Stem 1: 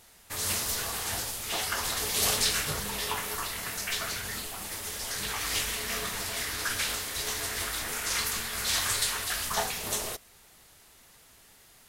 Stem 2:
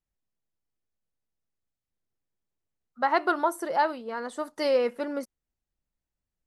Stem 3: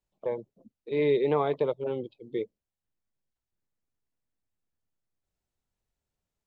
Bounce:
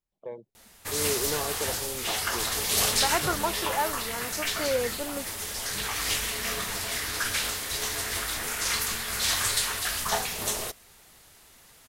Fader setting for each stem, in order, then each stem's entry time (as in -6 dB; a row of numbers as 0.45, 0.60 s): +2.0, -4.0, -7.5 dB; 0.55, 0.00, 0.00 s